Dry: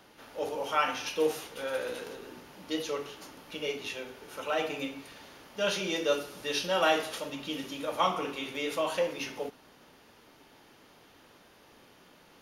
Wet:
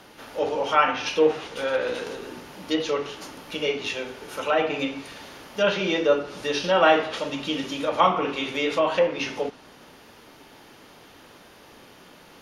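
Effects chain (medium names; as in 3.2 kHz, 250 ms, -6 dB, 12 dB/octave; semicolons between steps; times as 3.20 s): 5.98–6.64 s: dynamic bell 3.1 kHz, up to -5 dB, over -43 dBFS, Q 0.8; low-pass that closes with the level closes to 2.6 kHz, closed at -26.5 dBFS; trim +8.5 dB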